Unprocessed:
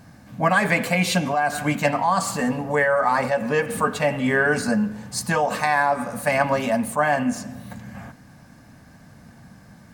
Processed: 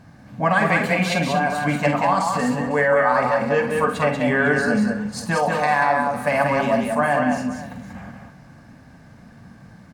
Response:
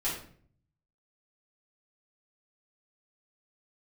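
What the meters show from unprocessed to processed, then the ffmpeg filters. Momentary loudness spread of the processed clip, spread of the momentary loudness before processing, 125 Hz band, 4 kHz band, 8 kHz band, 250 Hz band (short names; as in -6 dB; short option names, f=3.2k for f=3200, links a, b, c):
8 LU, 8 LU, +2.0 dB, -1.0 dB, -5.0 dB, +2.0 dB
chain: -filter_complex "[0:a]highshelf=f=6.6k:g=-12,asplit=2[a][b];[b]aecho=0:1:48|188|218|251|504:0.398|0.631|0.126|0.188|0.141[c];[a][c]amix=inputs=2:normalize=0"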